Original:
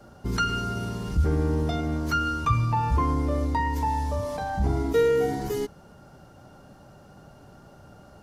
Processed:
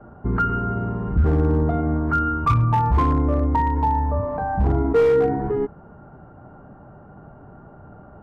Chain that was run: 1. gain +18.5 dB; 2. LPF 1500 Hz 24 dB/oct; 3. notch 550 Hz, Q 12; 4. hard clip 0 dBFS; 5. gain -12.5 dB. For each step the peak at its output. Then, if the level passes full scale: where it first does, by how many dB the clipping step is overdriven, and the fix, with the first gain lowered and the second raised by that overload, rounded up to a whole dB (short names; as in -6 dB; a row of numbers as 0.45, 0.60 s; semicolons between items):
+8.0, +7.5, +7.5, 0.0, -12.5 dBFS; step 1, 7.5 dB; step 1 +10.5 dB, step 5 -4.5 dB